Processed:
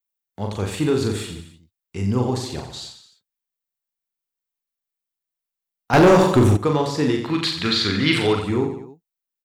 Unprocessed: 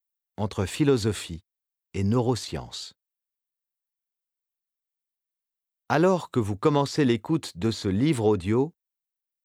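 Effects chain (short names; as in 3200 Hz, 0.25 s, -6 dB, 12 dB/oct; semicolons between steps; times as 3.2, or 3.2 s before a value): 7.22–8.35 band shelf 2500 Hz +14.5 dB 2.4 oct; reverse bouncing-ball echo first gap 40 ms, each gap 1.2×, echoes 5; 5.93–6.57 sample leveller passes 3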